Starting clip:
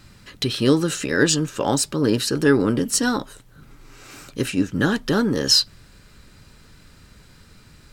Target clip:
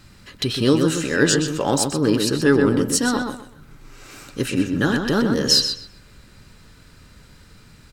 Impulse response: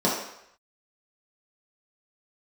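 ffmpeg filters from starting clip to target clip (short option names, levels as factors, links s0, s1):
-filter_complex "[0:a]asplit=2[s0][s1];[s1]adelay=127,lowpass=f=3900:p=1,volume=0.562,asplit=2[s2][s3];[s3]adelay=127,lowpass=f=3900:p=1,volume=0.26,asplit=2[s4][s5];[s5]adelay=127,lowpass=f=3900:p=1,volume=0.26[s6];[s0][s2][s4][s6]amix=inputs=4:normalize=0"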